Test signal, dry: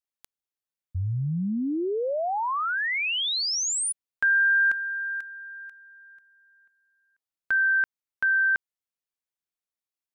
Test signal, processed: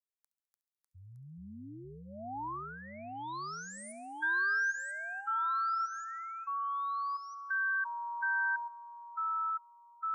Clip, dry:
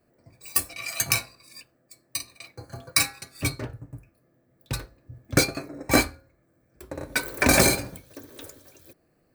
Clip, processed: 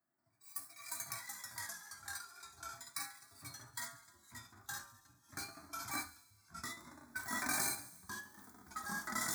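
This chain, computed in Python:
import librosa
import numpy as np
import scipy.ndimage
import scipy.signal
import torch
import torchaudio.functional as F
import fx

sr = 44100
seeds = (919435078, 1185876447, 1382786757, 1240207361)

y = fx.highpass(x, sr, hz=680.0, slope=6)
y = fx.echo_pitch(y, sr, ms=249, semitones=-3, count=3, db_per_echo=-3.0)
y = fx.fixed_phaser(y, sr, hz=1200.0, stages=4)
y = fx.hpss(y, sr, part='percussive', gain_db=-13)
y = fx.echo_wet_highpass(y, sr, ms=69, feedback_pct=69, hz=3600.0, wet_db=-16)
y = y * 10.0 ** (-8.0 / 20.0)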